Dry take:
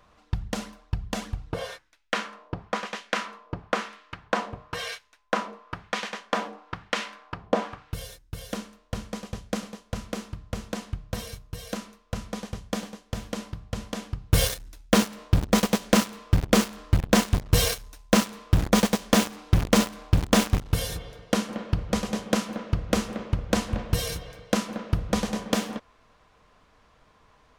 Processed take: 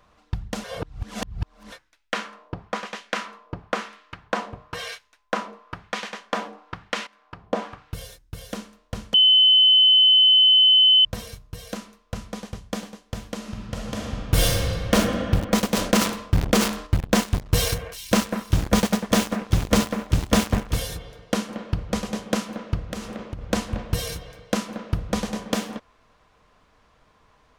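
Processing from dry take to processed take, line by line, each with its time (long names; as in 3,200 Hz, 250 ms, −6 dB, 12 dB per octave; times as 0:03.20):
0:00.64–0:01.72: reverse
0:07.07–0:07.88: fade in equal-power, from −17.5 dB
0:09.14–0:11.05: beep over 3,040 Hz −11.5 dBFS
0:13.37–0:14.94: thrown reverb, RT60 2.5 s, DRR −2.5 dB
0:15.72–0:16.87: level that may fall only so fast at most 88 dB per second
0:17.43–0:20.90: delay that swaps between a low-pass and a high-pass 195 ms, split 2,200 Hz, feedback 60%, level −8 dB
0:22.88–0:23.46: downward compressor, threshold −27 dBFS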